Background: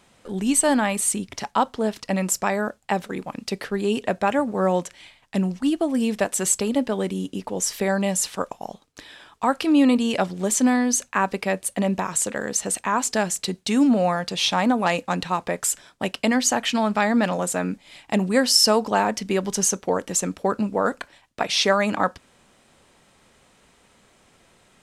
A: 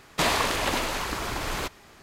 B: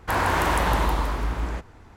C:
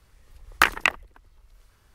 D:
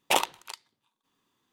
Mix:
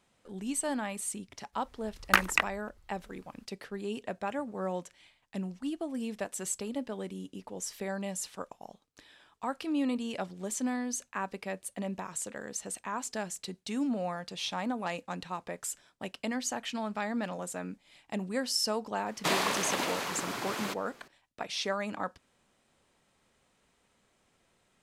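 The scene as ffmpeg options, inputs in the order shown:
-filter_complex "[0:a]volume=-13.5dB[a];[1:a]highpass=f=140:w=0.5412,highpass=f=140:w=1.3066[b];[3:a]atrim=end=1.94,asetpts=PTS-STARTPTS,volume=-5dB,afade=t=in:d=0.02,afade=t=out:st=1.92:d=0.02,adelay=1520[c];[b]atrim=end=2.02,asetpts=PTS-STARTPTS,volume=-5dB,afade=t=in:d=0.004:c=hsin,afade=t=out:st=2.016:d=0.004:c=hsin,adelay=19060[d];[a][c][d]amix=inputs=3:normalize=0"

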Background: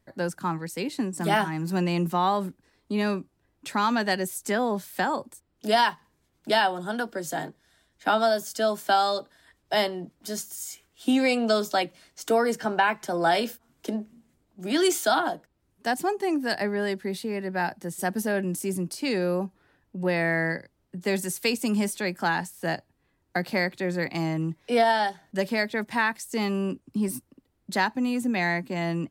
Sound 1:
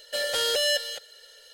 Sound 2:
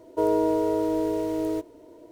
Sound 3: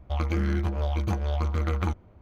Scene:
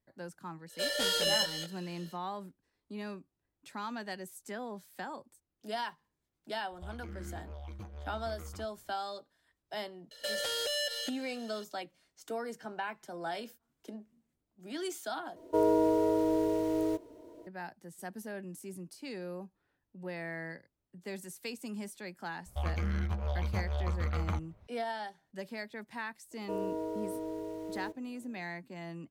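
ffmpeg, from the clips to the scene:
-filter_complex "[1:a]asplit=2[a][b];[3:a]asplit=2[c][d];[2:a]asplit=2[e][f];[0:a]volume=-15.5dB[g];[a]flanger=delay=20:depth=4.8:speed=2[h];[c]alimiter=limit=-21dB:level=0:latency=1:release=234[i];[b]acompressor=threshold=-28dB:ratio=6:attack=3.2:release=140:knee=1:detection=peak[j];[d]equalizer=f=320:t=o:w=0.44:g=-12.5[k];[g]asplit=2[l][m];[l]atrim=end=15.364[n];[e]atrim=end=2.11,asetpts=PTS-STARTPTS,volume=-3.5dB[o];[m]atrim=start=17.466[p];[h]atrim=end=1.53,asetpts=PTS-STARTPTS,volume=-1.5dB,afade=t=in:d=0.1,afade=t=out:st=1.43:d=0.1,adelay=660[q];[i]atrim=end=2.21,asetpts=PTS-STARTPTS,volume=-14dB,afade=t=in:d=0.004:c=hsin,afade=t=out:st=2.206:d=0.004:c=hsin,adelay=6720[r];[j]atrim=end=1.53,asetpts=PTS-STARTPTS,volume=-3dB,afade=t=in:d=0.004:c=hsin,afade=t=out:st=1.526:d=0.004:c=hsin,adelay=10110[s];[k]atrim=end=2.21,asetpts=PTS-STARTPTS,volume=-6dB,afade=t=in:d=0.004:c=hsin,afade=t=out:st=2.206:d=0.004:c=hsin,adelay=22460[t];[f]atrim=end=2.11,asetpts=PTS-STARTPTS,volume=-13.5dB,afade=t=in:d=0.004:c=hsin,afade=t=out:st=2.106:d=0.004:c=hsin,adelay=26310[u];[n][o]acrossfade=d=0.004:c1=hsin:c2=hsin[v];[v][p]acrossfade=d=0.004:c1=hsin:c2=hsin[w];[w][q][r][s][t][u]amix=inputs=6:normalize=0"

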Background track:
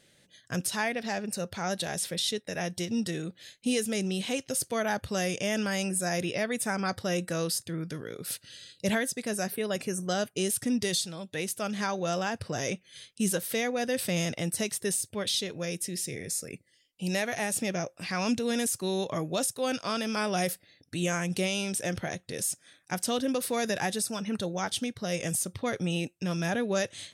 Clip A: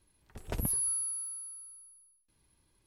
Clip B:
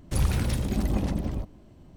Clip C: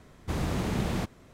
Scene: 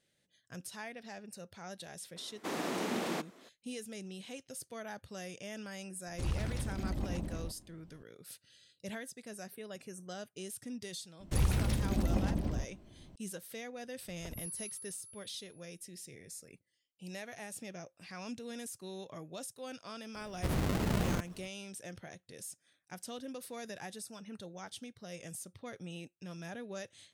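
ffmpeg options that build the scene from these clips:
-filter_complex "[3:a]asplit=2[a][b];[2:a]asplit=2[c][d];[0:a]volume=-15dB[e];[a]highpass=f=250:w=0.5412,highpass=f=250:w=1.3066[f];[c]acrossover=split=9000[g][h];[h]acompressor=threshold=-55dB:ratio=4:attack=1:release=60[i];[g][i]amix=inputs=2:normalize=0[j];[b]acrusher=samples=37:mix=1:aa=0.000001:lfo=1:lforange=37:lforate=4[k];[f]atrim=end=1.33,asetpts=PTS-STARTPTS,volume=-1.5dB,afade=t=in:d=0.004:c=hsin,afade=t=out:st=1.326:d=0.004:c=hsin,adelay=2160[l];[j]atrim=end=1.96,asetpts=PTS-STARTPTS,volume=-10.5dB,afade=t=in:d=0.004:c=hsin,afade=t=out:st=1.956:d=0.004:c=hsin,adelay=6070[m];[d]atrim=end=1.96,asetpts=PTS-STARTPTS,volume=-5dB,afade=t=in:d=0.004:c=hsin,afade=t=out:st=1.956:d=0.004:c=hsin,adelay=11200[n];[1:a]atrim=end=2.86,asetpts=PTS-STARTPTS,volume=-12.5dB,afade=t=in:d=0.004:c=hsin,afade=t=out:st=2.856:d=0.004:c=hsin,adelay=13730[o];[k]atrim=end=1.33,asetpts=PTS-STARTPTS,volume=-2.5dB,afade=t=in:d=0.004:c=hsin,afade=t=out:st=1.326:d=0.004:c=hsin,adelay=20150[p];[e][l][m][n][o][p]amix=inputs=6:normalize=0"

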